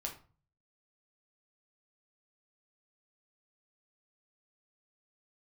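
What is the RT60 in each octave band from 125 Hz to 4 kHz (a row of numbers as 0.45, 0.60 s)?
0.70, 0.50, 0.35, 0.40, 0.30, 0.25 s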